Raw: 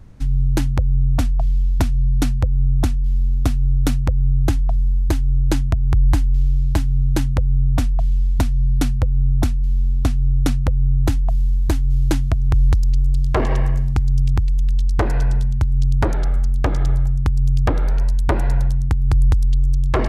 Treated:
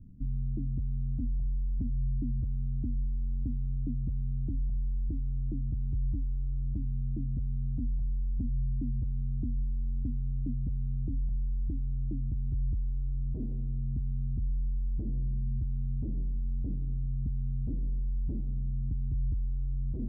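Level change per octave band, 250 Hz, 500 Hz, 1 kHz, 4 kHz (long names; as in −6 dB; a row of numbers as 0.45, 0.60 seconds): −12.5 dB, −27.5 dB, below −40 dB, below −40 dB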